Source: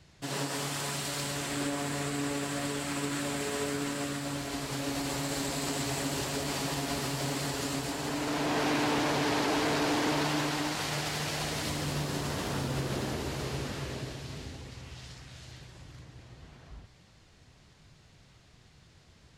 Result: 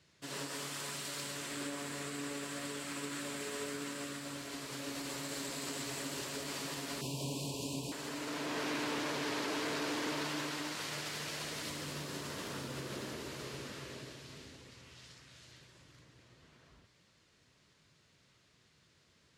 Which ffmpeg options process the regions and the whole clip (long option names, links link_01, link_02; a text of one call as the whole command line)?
ffmpeg -i in.wav -filter_complex "[0:a]asettb=1/sr,asplit=3[link_01][link_02][link_03];[link_01]atrim=end=7.014[link_04];[link_02]atrim=start=7.01:end=7.92,asetpts=PTS-STARTPTS,afade=type=in:duration=0.004:curve=qsin,afade=type=out:start_time=0.906:duration=0.004:curve=qsin,asuperstop=centerf=1600:order=20:qfactor=1.2,equalizer=frequency=110:width=0.57:gain=8.5[link_05];[link_03]atrim=start=7.916[link_06];[link_04][link_05]acrossfade=duration=0.004:curve1=hsin:curve2=qsin[link_07];[link_07][link_06]acrossfade=duration=0.004:curve1=qsin:curve2=hsin,highpass=frequency=260:poles=1,equalizer=frequency=770:width_type=o:width=0.37:gain=-8.5,volume=-6dB" out.wav